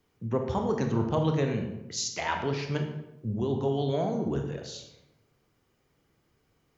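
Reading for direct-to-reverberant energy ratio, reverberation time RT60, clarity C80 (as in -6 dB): 3.5 dB, 0.90 s, 8.5 dB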